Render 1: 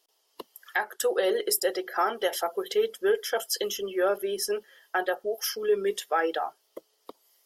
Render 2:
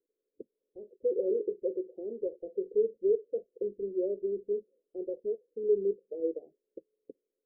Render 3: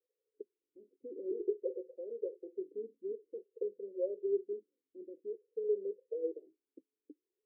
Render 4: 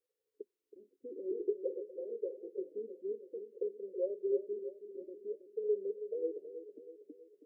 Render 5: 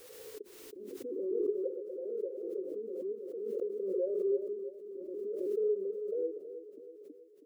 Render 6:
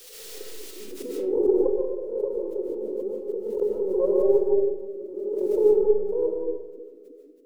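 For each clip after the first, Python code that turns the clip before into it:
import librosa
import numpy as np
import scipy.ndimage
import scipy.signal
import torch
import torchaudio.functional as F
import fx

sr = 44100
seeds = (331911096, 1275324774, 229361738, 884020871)

y1 = scipy.signal.sosfilt(scipy.signal.butter(12, 520.0, 'lowpass', fs=sr, output='sos'), x)
y1 = y1 * librosa.db_to_amplitude(-2.0)
y2 = fx.vowel_sweep(y1, sr, vowels='e-i', hz=0.51)
y2 = y2 * librosa.db_to_amplitude(3.0)
y3 = fx.echo_feedback(y2, sr, ms=323, feedback_pct=52, wet_db=-11)
y4 = fx.pre_swell(y3, sr, db_per_s=26.0)
y5 = fx.tracing_dist(y4, sr, depth_ms=0.072)
y5 = fx.rev_freeverb(y5, sr, rt60_s=0.71, hf_ratio=0.6, predelay_ms=105, drr_db=-1.0)
y5 = fx.band_widen(y5, sr, depth_pct=40)
y5 = y5 * librosa.db_to_amplitude(8.5)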